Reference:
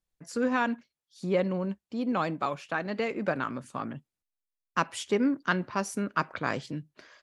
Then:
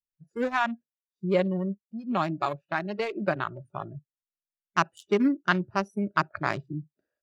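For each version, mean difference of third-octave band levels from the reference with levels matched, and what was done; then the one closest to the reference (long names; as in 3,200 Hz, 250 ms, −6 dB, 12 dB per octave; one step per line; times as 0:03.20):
7.0 dB: adaptive Wiener filter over 41 samples
noise reduction from a noise print of the clip's start 22 dB
high-shelf EQ 6,200 Hz +7 dB
level +3.5 dB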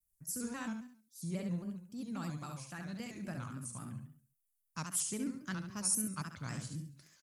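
9.5 dB: drawn EQ curve 130 Hz 0 dB, 450 Hz −21 dB, 3,500 Hz −13 dB, 9,900 Hz +13 dB
on a send: repeating echo 69 ms, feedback 39%, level −5 dB
on the sum: pitch modulation by a square or saw wave square 3.7 Hz, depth 100 cents
level −1 dB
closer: first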